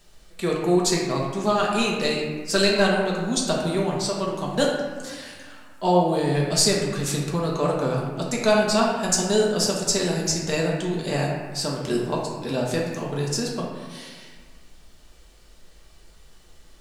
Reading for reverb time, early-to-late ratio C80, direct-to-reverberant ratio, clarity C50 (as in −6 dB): 1.5 s, 3.5 dB, −3.5 dB, 1.5 dB